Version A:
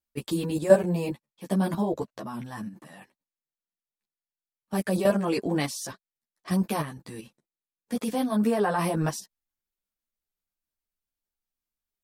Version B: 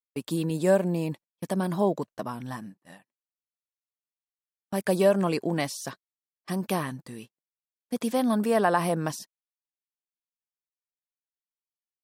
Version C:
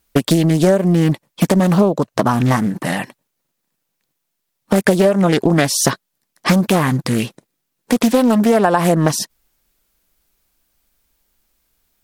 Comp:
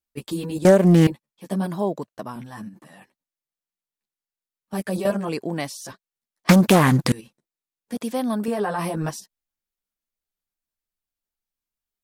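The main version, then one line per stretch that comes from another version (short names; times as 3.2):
A
0.65–1.07 from C
1.66–2.36 from B
5.29–5.85 from B
6.49–7.12 from C
7.97–8.48 from B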